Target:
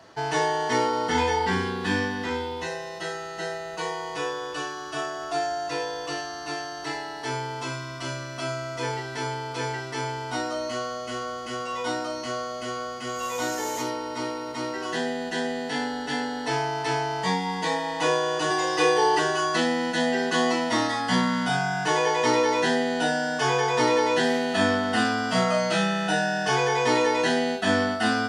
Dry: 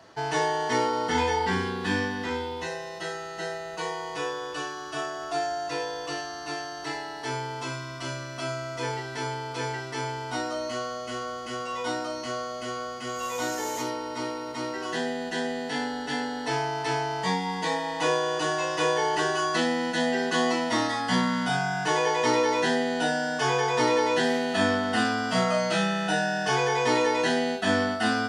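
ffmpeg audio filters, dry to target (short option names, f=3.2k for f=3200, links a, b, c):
-filter_complex "[0:a]asettb=1/sr,asplit=3[a][b][c];[a]atrim=end=18.504[d];[b]atrim=start=18.5:end=19.19,asetpts=PTS-STARTPTS,afade=t=in:d=0.004:c=qsin,afade=t=out:st=0.686:d=0.004:c=qsin,aecho=1:1:2.5:0.93,atrim=end_sample=30429[e];[c]atrim=start=19.186[f];[d][e]acrossfade=d=0.004:c1=hsin:c2=qsin[g];[g][f]acrossfade=d=0.004:c1=qsin:c2=hsin,volume=1.5dB"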